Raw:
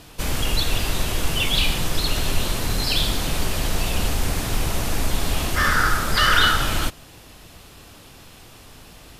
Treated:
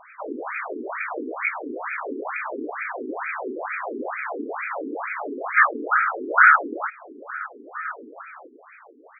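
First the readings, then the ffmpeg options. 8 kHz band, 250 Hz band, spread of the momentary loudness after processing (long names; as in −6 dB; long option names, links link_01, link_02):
below −40 dB, −3.5 dB, 15 LU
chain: -filter_complex "[0:a]asplit=2[link_01][link_02];[link_02]adelay=1574,volume=-13dB,highshelf=frequency=4000:gain=-35.4[link_03];[link_01][link_03]amix=inputs=2:normalize=0,crystalizer=i=4:c=0,afftfilt=real='re*between(b*sr/1024,310*pow(1800/310,0.5+0.5*sin(2*PI*2.2*pts/sr))/1.41,310*pow(1800/310,0.5+0.5*sin(2*PI*2.2*pts/sr))*1.41)':imag='im*between(b*sr/1024,310*pow(1800/310,0.5+0.5*sin(2*PI*2.2*pts/sr))/1.41,310*pow(1800/310,0.5+0.5*sin(2*PI*2.2*pts/sr))*1.41)':win_size=1024:overlap=0.75,volume=5.5dB"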